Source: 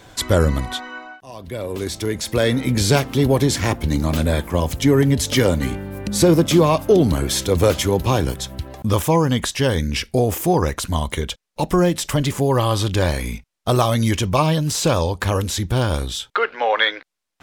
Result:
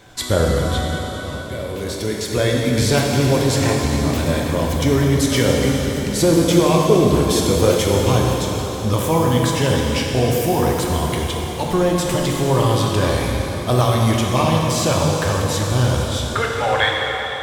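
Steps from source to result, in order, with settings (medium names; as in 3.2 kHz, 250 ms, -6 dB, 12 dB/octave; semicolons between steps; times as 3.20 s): plate-style reverb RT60 4.3 s, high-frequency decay 0.95×, DRR -2 dB; trim -2.5 dB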